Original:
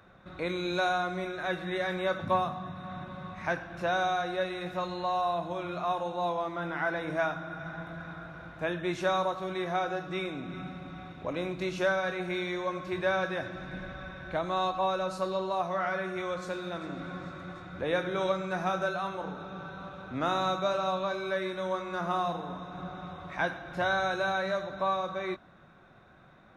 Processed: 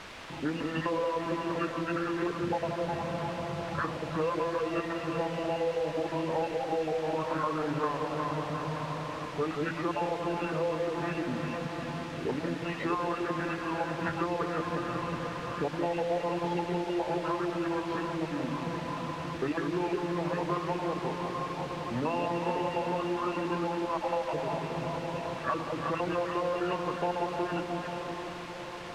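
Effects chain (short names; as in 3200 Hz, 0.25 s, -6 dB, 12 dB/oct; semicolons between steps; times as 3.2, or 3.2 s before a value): random spectral dropouts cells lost 29%; echo with dull and thin repeats by turns 0.165 s, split 860 Hz, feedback 66%, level -5 dB; formant shift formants -4 st; on a send: diffused feedback echo 0.687 s, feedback 64%, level -16 dB; on the sum: compressor, threshold -34 dBFS, peak gain reduction 11 dB; HPF 130 Hz 12 dB/oct; notches 60/120/180/240/300/360 Hz; in parallel at -4 dB: requantised 6-bit, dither triangular; on the sum: wide varispeed 0.918×; LPF 2700 Hz 12 dB/oct; gain +2.5 dB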